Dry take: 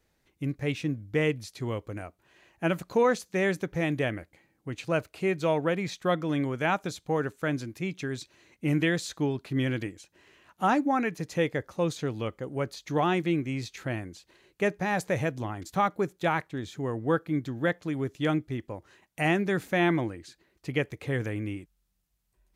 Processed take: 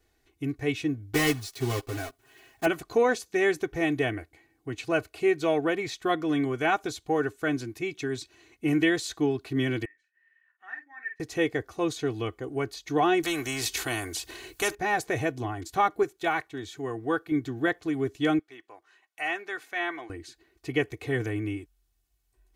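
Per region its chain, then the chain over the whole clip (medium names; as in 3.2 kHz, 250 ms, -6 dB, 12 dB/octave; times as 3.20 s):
1.14–2.67 s: block-companded coder 3-bit + comb 7.5 ms, depth 73%
9.85–11.20 s: band-pass filter 1.8 kHz, Q 18 + doubling 47 ms -7.5 dB
13.23–14.75 s: treble shelf 6.8 kHz +9 dB + spectrum-flattening compressor 2:1
16.03–17.32 s: de-esser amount 85% + bass shelf 490 Hz -6 dB
18.39–20.10 s: high-pass 1.2 kHz + tilt EQ -3 dB/octave
whole clip: band-stop 1.1 kHz, Q 29; comb 2.7 ms, depth 78%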